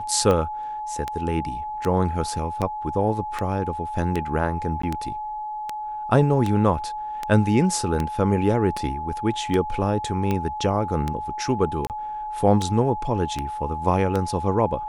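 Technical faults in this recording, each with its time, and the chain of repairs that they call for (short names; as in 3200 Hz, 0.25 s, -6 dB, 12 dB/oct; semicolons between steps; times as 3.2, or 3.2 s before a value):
tick 78 rpm -12 dBFS
tone 850 Hz -28 dBFS
4.82–4.83 gap 14 ms
11.87–11.9 gap 28 ms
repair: de-click; notch 850 Hz, Q 30; interpolate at 4.82, 14 ms; interpolate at 11.87, 28 ms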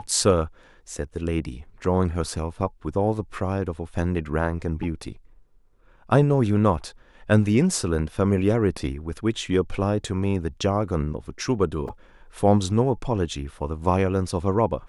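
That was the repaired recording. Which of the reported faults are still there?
none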